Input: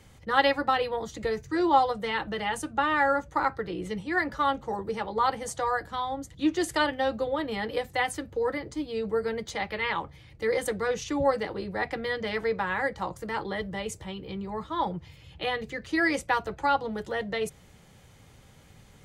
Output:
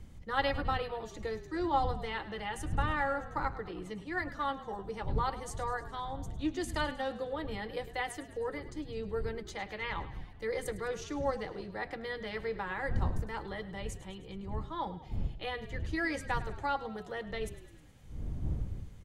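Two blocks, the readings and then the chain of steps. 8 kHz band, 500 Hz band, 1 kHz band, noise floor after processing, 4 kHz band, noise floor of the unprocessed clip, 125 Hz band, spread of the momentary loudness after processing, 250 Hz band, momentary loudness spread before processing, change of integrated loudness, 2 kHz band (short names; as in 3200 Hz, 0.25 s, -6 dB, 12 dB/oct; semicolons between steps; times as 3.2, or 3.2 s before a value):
-8.5 dB, -8.5 dB, -8.5 dB, -50 dBFS, -8.5 dB, -54 dBFS, +3.0 dB, 9 LU, -8.0 dB, 10 LU, -8.0 dB, -8.5 dB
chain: wind noise 82 Hz -32 dBFS; frequency-shifting echo 0.104 s, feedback 59%, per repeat -35 Hz, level -15 dB; gain -8.5 dB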